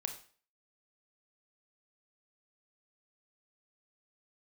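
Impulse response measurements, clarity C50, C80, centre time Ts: 9.5 dB, 14.0 dB, 13 ms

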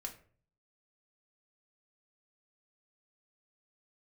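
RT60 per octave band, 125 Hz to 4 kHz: 0.75, 0.55, 0.50, 0.40, 0.40, 0.25 seconds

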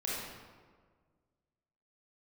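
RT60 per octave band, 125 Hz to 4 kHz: 2.1, 1.9, 1.7, 1.5, 1.2, 0.95 seconds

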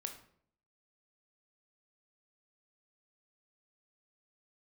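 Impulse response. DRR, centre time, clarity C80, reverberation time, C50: 4.5 dB, 16 ms, 13.0 dB, 0.60 s, 9.0 dB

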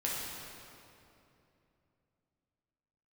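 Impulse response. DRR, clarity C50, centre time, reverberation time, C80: −5.5 dB, −1.5 dB, 142 ms, 2.9 s, 0.0 dB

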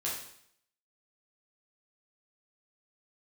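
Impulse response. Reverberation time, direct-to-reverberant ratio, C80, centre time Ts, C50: 0.65 s, −6.0 dB, 6.5 dB, 45 ms, 3.0 dB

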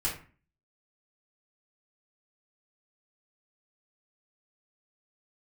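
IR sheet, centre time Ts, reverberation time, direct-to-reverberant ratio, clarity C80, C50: 29 ms, 0.40 s, −6.5 dB, 12.0 dB, 6.5 dB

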